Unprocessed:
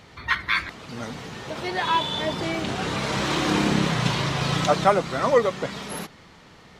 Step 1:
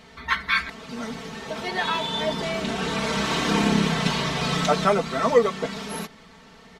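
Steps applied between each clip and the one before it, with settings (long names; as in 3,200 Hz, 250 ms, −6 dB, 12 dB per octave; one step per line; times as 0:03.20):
comb filter 4.5 ms, depth 91%
level −2 dB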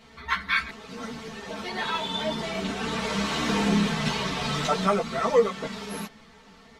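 string-ensemble chorus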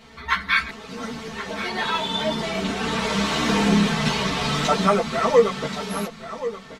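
single-tap delay 1,079 ms −12.5 dB
level +4.5 dB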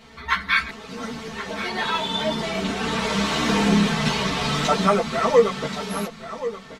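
no processing that can be heard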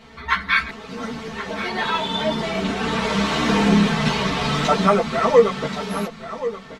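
high-shelf EQ 4,800 Hz −7 dB
level +2.5 dB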